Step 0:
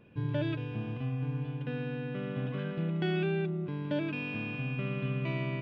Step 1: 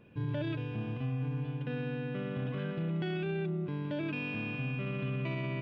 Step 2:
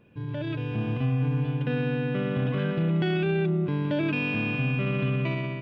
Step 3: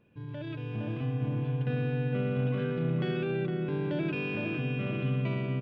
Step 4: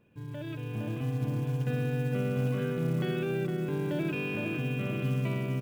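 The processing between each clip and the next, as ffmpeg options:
-af "alimiter=level_in=1.41:limit=0.0631:level=0:latency=1:release=16,volume=0.708"
-af "dynaudnorm=f=240:g=5:m=2.82"
-filter_complex "[0:a]asplit=2[s0][s1];[s1]adelay=460,lowpass=f=1500:p=1,volume=0.708,asplit=2[s2][s3];[s3]adelay=460,lowpass=f=1500:p=1,volume=0.53,asplit=2[s4][s5];[s5]adelay=460,lowpass=f=1500:p=1,volume=0.53,asplit=2[s6][s7];[s7]adelay=460,lowpass=f=1500:p=1,volume=0.53,asplit=2[s8][s9];[s9]adelay=460,lowpass=f=1500:p=1,volume=0.53,asplit=2[s10][s11];[s11]adelay=460,lowpass=f=1500:p=1,volume=0.53,asplit=2[s12][s13];[s13]adelay=460,lowpass=f=1500:p=1,volume=0.53[s14];[s0][s2][s4][s6][s8][s10][s12][s14]amix=inputs=8:normalize=0,volume=0.447"
-af "acrusher=bits=7:mode=log:mix=0:aa=0.000001"

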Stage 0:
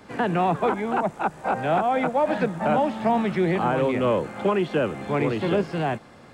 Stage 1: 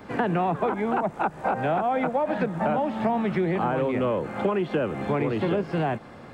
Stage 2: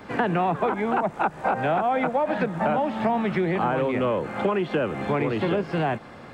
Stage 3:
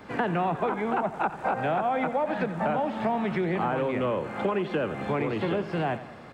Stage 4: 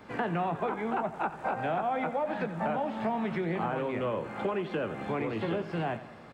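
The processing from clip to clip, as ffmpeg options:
-af "equalizer=f=8200:t=o:w=2.3:g=-8.5,acompressor=threshold=0.0501:ratio=6,volume=1.68"
-af "equalizer=f=2700:w=0.33:g=3.5"
-af "aecho=1:1:88|176|264|352|440:0.2|0.104|0.054|0.0281|0.0146,volume=0.668"
-filter_complex "[0:a]asplit=2[s0][s1];[s1]adelay=18,volume=0.282[s2];[s0][s2]amix=inputs=2:normalize=0,volume=0.596"

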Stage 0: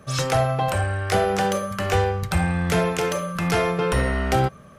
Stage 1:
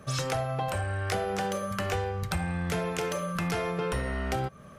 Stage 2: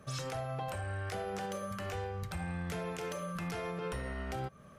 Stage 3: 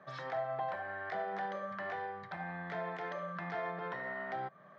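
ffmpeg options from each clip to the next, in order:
-af "acompressor=threshold=0.0501:ratio=5,volume=0.841"
-af "alimiter=limit=0.0708:level=0:latency=1:release=70,volume=0.473"
-af "highpass=f=170:w=0.5412,highpass=f=170:w=1.3066,equalizer=f=240:t=q:w=4:g=-9,equalizer=f=460:t=q:w=4:g=-5,equalizer=f=690:t=q:w=4:g=9,equalizer=f=980:t=q:w=4:g=6,equalizer=f=1800:t=q:w=4:g=10,equalizer=f=2700:t=q:w=4:g=-10,lowpass=f=3700:w=0.5412,lowpass=f=3700:w=1.3066,volume=0.75"

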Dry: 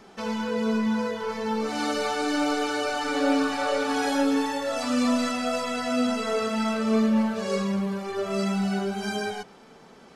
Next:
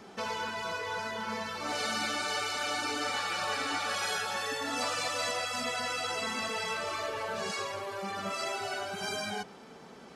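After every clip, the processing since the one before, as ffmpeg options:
-af "highpass=50,afftfilt=real='re*lt(hypot(re,im),0.158)':imag='im*lt(hypot(re,im),0.158)':win_size=1024:overlap=0.75"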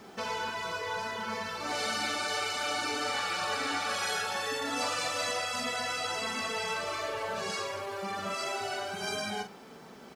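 -filter_complex "[0:a]acrusher=bits=10:mix=0:aa=0.000001,asplit=2[s0][s1];[s1]adelay=43,volume=0.398[s2];[s0][s2]amix=inputs=2:normalize=0"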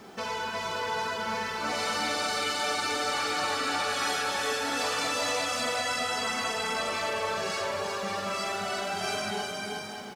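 -filter_complex "[0:a]asoftclip=type=tanh:threshold=0.0596,asplit=2[s0][s1];[s1]aecho=0:1:360|576|705.6|783.4|830:0.631|0.398|0.251|0.158|0.1[s2];[s0][s2]amix=inputs=2:normalize=0,volume=1.26"

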